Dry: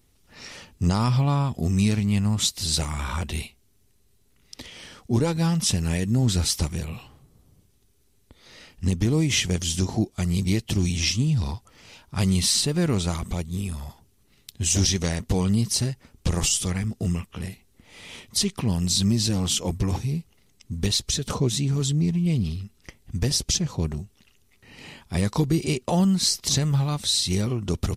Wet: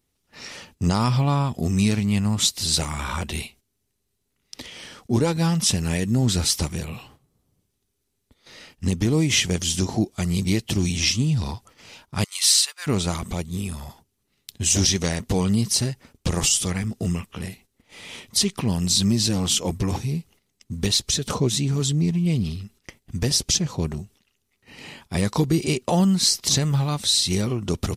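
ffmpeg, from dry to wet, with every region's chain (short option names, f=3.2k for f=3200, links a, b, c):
-filter_complex "[0:a]asettb=1/sr,asplit=3[a][b][c];[a]atrim=end=12.244[d];[b]atrim=start=12.24:end=12.87,asetpts=PTS-STARTPTS,afade=t=in:d=0.004:c=qsin,afade=t=out:st=0.626:d=0.004:c=qsin,highpass=f=1.1k:w=0.5412,highpass=f=1.1k:w=1.3066,highshelf=f=5.8k:g=3.5,agate=range=-33dB:threshold=-34dB:ratio=3:release=100:detection=peak[e];[c]atrim=start=12.866[f];[d][e]acrossfade=d=0.004:c1=hsin:c2=qsin[g];[g][f]acrossfade=d=0.004:c1=qsin:c2=hsin,lowshelf=f=89:g=-8.5,agate=range=-11dB:threshold=-52dB:ratio=16:detection=peak,volume=3dB"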